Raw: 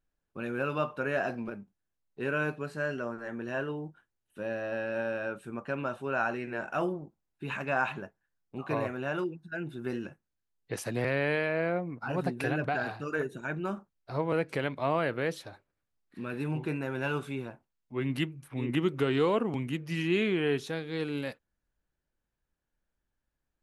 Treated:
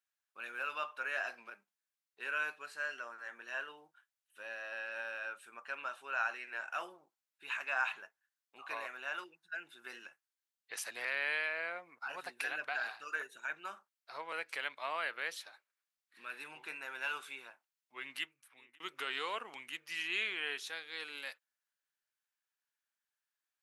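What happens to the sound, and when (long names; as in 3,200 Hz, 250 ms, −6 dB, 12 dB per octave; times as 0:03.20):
0:18.07–0:18.80: fade out
whole clip: high-pass filter 1,400 Hz 12 dB per octave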